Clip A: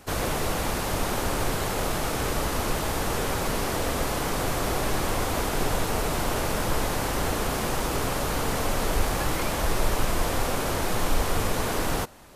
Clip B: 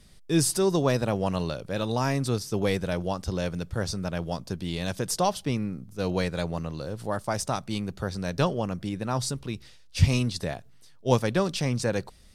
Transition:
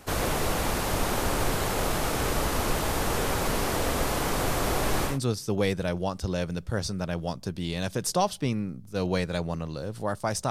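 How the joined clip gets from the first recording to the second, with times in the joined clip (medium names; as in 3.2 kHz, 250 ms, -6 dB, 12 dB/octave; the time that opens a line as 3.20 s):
clip A
5.11 s: go over to clip B from 2.15 s, crossfade 0.16 s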